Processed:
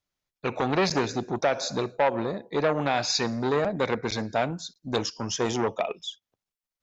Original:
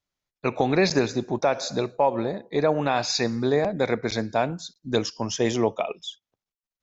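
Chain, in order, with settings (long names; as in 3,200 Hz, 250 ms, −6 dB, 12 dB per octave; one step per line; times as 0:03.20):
saturating transformer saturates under 1,300 Hz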